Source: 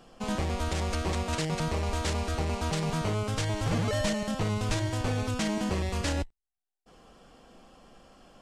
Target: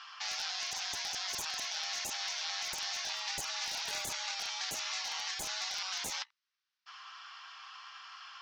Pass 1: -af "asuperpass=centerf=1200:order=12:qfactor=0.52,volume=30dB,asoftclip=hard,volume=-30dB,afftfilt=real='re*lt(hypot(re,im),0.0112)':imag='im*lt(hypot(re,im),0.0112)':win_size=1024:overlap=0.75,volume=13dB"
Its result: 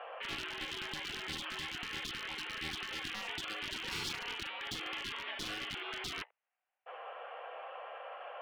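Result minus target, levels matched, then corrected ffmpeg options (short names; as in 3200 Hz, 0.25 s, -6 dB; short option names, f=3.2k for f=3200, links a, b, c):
2000 Hz band +5.0 dB
-af "asuperpass=centerf=2500:order=12:qfactor=0.52,volume=30dB,asoftclip=hard,volume=-30dB,afftfilt=real='re*lt(hypot(re,im),0.0112)':imag='im*lt(hypot(re,im),0.0112)':win_size=1024:overlap=0.75,volume=13dB"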